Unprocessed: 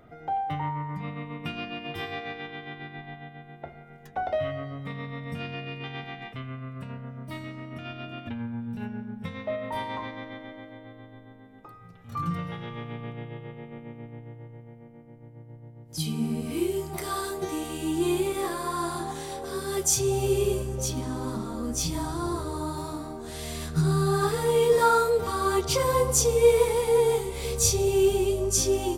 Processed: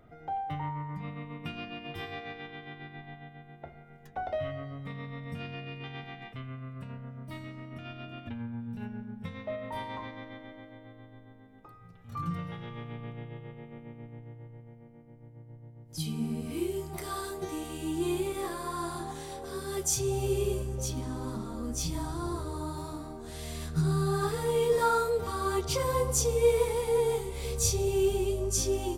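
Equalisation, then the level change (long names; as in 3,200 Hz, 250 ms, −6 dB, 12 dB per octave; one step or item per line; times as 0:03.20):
low-shelf EQ 91 Hz +7 dB
−5.5 dB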